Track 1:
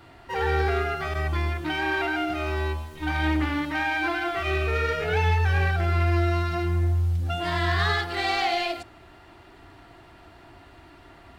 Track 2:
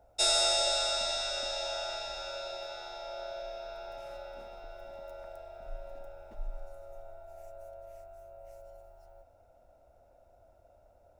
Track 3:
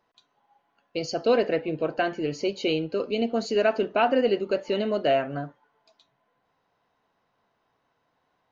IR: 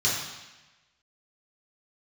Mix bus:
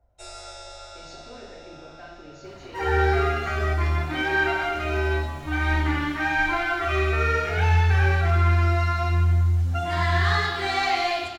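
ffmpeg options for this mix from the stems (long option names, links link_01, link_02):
-filter_complex "[0:a]adelay=2450,volume=-1.5dB,asplit=2[link_01][link_02];[link_02]volume=-11dB[link_03];[1:a]bass=frequency=250:gain=9,treble=frequency=4000:gain=-7,volume=-10.5dB,asplit=2[link_04][link_05];[link_05]volume=-12.5dB[link_06];[2:a]alimiter=limit=-20.5dB:level=0:latency=1,volume=-17.5dB,asplit=2[link_07][link_08];[link_08]volume=-8.5dB[link_09];[3:a]atrim=start_sample=2205[link_10];[link_03][link_06][link_09]amix=inputs=3:normalize=0[link_11];[link_11][link_10]afir=irnorm=-1:irlink=0[link_12];[link_01][link_04][link_07][link_12]amix=inputs=4:normalize=0"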